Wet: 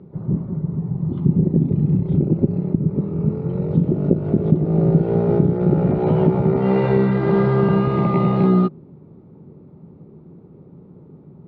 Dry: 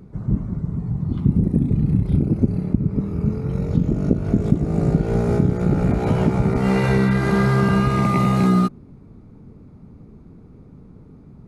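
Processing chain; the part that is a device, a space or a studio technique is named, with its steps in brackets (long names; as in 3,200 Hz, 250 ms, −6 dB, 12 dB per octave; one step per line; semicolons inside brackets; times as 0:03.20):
guitar cabinet (loudspeaker in its box 97–3,500 Hz, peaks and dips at 160 Hz +9 dB, 370 Hz +10 dB, 550 Hz +7 dB, 870 Hz +5 dB, 1,600 Hz −4 dB, 2,300 Hz −5 dB)
level −3 dB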